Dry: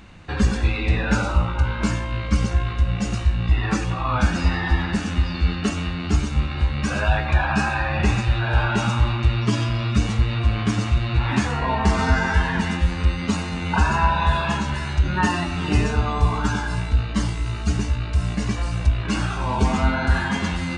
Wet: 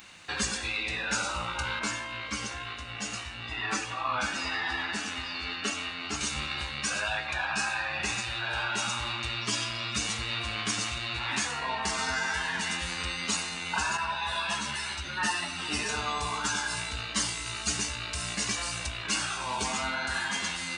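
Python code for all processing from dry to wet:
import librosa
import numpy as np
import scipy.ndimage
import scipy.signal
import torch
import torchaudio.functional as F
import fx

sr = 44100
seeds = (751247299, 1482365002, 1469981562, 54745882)

y = fx.chain(x, sr, fx.highpass(hz=140.0, slope=6),
    fx.high_shelf(hz=4100.0, db=-10.0),
    fx.notch_comb(f0_hz=180.0), at=(1.79, 6.21))
y = fx.chain(y, sr, fx.highpass(hz=42.0, slope=12),
    fx.notch(hz=6800.0, q=9.0),
    fx.ensemble(), at=(13.97, 15.89))
y = fx.tilt_eq(y, sr, slope=4.5)
y = fx.rider(y, sr, range_db=3, speed_s=0.5)
y = y * 10.0 ** (-6.0 / 20.0)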